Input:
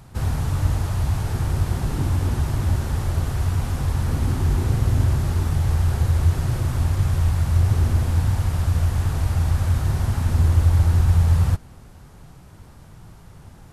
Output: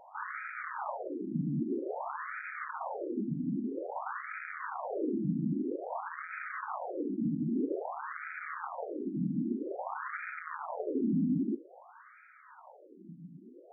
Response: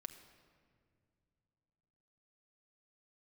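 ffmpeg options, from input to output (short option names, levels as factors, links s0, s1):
-filter_complex "[0:a]asoftclip=type=hard:threshold=0.1,asplit=2[s0][s1];[1:a]atrim=start_sample=2205,atrim=end_sample=4410[s2];[s1][s2]afir=irnorm=-1:irlink=0,volume=1.33[s3];[s0][s3]amix=inputs=2:normalize=0,afftfilt=real='re*between(b*sr/1024,220*pow(1800/220,0.5+0.5*sin(2*PI*0.51*pts/sr))/1.41,220*pow(1800/220,0.5+0.5*sin(2*PI*0.51*pts/sr))*1.41)':imag='im*between(b*sr/1024,220*pow(1800/220,0.5+0.5*sin(2*PI*0.51*pts/sr))/1.41,220*pow(1800/220,0.5+0.5*sin(2*PI*0.51*pts/sr))*1.41)':win_size=1024:overlap=0.75"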